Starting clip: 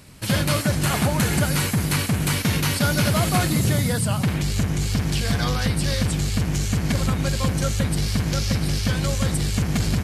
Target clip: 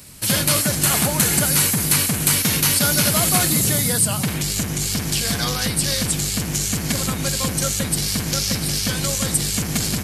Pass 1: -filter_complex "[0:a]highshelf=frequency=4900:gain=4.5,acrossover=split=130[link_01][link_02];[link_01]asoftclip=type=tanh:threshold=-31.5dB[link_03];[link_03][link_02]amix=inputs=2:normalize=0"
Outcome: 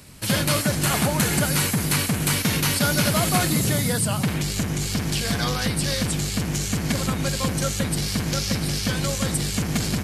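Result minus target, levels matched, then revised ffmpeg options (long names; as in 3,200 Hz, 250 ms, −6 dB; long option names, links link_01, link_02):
8,000 Hz band −3.0 dB
-filter_complex "[0:a]highshelf=frequency=4900:gain=14.5,acrossover=split=130[link_01][link_02];[link_01]asoftclip=type=tanh:threshold=-31.5dB[link_03];[link_03][link_02]amix=inputs=2:normalize=0"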